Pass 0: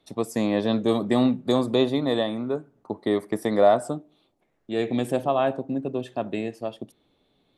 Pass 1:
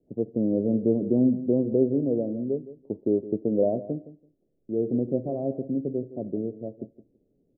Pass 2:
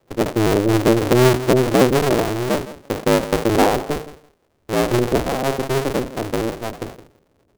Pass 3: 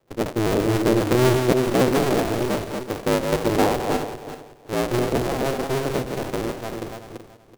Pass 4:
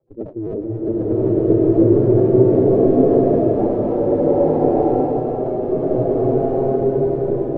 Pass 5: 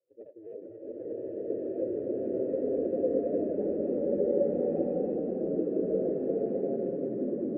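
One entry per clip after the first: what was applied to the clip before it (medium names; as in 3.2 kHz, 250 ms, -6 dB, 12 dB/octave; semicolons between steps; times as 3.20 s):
steep low-pass 530 Hz 36 dB/octave; feedback delay 166 ms, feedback 16%, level -15 dB
cycle switcher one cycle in 2, inverted; decay stretcher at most 140 dB/s; trim +7.5 dB
backward echo that repeats 189 ms, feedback 46%, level -5 dB; trim -5 dB
spectral contrast enhancement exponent 2.4; swelling reverb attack 1190 ms, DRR -10.5 dB; trim -4 dB
coarse spectral quantiser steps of 15 dB; vowel filter e; ever faster or slower copies 381 ms, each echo -4 st, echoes 3; trim -6.5 dB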